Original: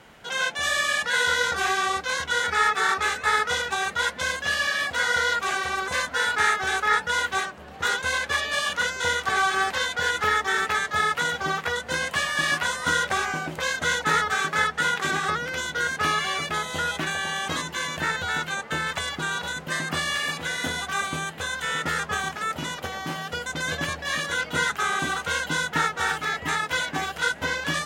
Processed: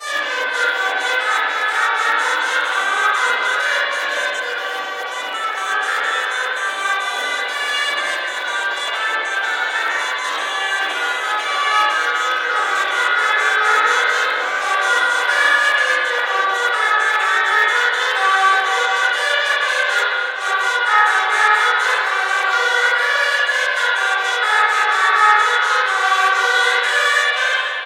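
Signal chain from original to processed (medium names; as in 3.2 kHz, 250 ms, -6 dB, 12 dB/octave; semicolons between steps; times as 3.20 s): reverse the whole clip; high-pass 470 Hz 24 dB/octave; echo from a far wall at 84 m, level -7 dB; spring tank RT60 1.6 s, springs 41/53/60 ms, chirp 30 ms, DRR -6 dB; trim +1.5 dB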